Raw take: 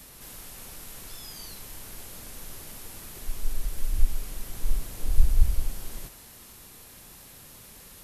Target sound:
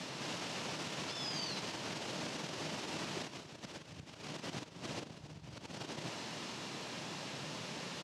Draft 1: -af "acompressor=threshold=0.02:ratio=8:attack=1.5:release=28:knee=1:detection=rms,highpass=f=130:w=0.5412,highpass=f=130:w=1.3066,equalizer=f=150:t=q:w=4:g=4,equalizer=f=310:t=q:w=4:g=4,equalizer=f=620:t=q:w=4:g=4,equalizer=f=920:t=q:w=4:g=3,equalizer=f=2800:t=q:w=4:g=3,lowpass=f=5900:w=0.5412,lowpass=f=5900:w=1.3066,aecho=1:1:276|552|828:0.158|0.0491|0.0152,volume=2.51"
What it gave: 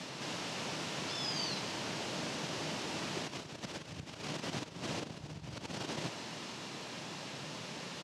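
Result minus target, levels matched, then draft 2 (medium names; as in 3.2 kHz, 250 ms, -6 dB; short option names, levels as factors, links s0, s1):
compression: peak gain reduction -5.5 dB
-af "acompressor=threshold=0.01:ratio=8:attack=1.5:release=28:knee=1:detection=rms,highpass=f=130:w=0.5412,highpass=f=130:w=1.3066,equalizer=f=150:t=q:w=4:g=4,equalizer=f=310:t=q:w=4:g=4,equalizer=f=620:t=q:w=4:g=4,equalizer=f=920:t=q:w=4:g=3,equalizer=f=2800:t=q:w=4:g=3,lowpass=f=5900:w=0.5412,lowpass=f=5900:w=1.3066,aecho=1:1:276|552|828:0.158|0.0491|0.0152,volume=2.51"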